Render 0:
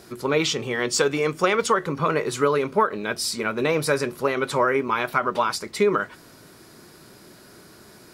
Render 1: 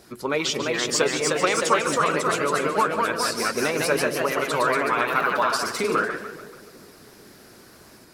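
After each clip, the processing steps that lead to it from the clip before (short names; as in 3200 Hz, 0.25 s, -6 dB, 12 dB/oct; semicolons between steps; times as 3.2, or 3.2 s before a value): split-band echo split 750 Hz, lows 0.205 s, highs 0.145 s, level -10.5 dB; harmonic-percussive split harmonic -8 dB; echoes that change speed 0.363 s, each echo +1 st, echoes 3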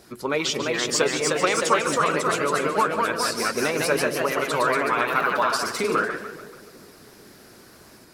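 nothing audible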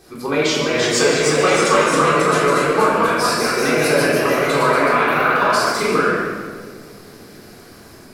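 shoebox room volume 810 m³, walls mixed, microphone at 3.7 m; gain -1.5 dB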